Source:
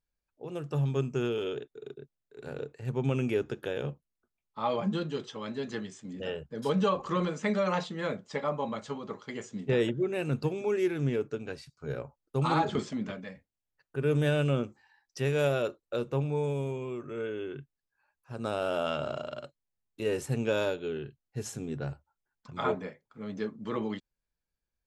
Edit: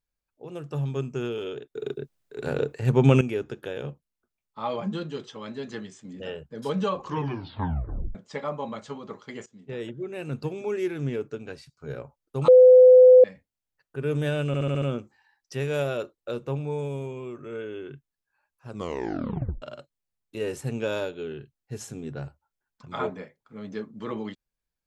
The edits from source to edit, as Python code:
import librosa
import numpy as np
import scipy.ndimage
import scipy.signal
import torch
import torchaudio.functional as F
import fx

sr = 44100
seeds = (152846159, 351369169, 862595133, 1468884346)

y = fx.edit(x, sr, fx.clip_gain(start_s=1.75, length_s=1.46, db=11.5),
    fx.tape_stop(start_s=7.01, length_s=1.14),
    fx.fade_in_from(start_s=9.46, length_s=1.14, floor_db=-16.0),
    fx.bleep(start_s=12.48, length_s=0.76, hz=507.0, db=-8.5),
    fx.stutter(start_s=14.47, slice_s=0.07, count=6),
    fx.tape_stop(start_s=18.34, length_s=0.93), tone=tone)